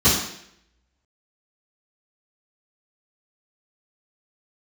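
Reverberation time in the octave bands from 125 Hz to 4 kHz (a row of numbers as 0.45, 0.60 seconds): 0.65, 0.70, 0.75, 0.65, 0.75, 0.70 seconds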